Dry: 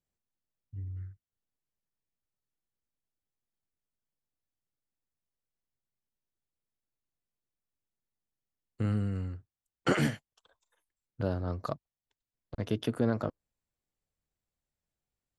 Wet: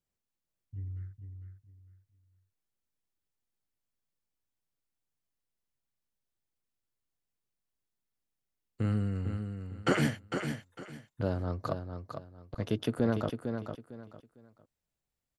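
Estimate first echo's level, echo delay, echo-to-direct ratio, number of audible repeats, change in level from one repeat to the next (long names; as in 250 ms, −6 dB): −7.0 dB, 453 ms, −6.5 dB, 3, −11.5 dB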